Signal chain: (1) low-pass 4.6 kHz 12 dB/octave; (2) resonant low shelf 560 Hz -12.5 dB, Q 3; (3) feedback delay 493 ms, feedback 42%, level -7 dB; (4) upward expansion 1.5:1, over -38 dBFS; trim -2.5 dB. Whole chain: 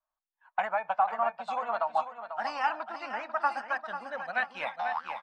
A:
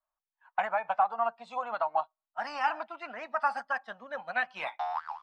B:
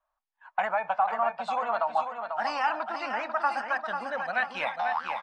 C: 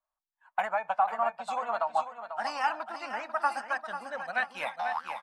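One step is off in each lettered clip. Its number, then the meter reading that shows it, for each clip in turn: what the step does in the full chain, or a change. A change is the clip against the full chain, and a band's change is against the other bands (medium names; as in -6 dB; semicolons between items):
3, momentary loudness spread change +2 LU; 4, crest factor change -2.5 dB; 1, 4 kHz band +1.5 dB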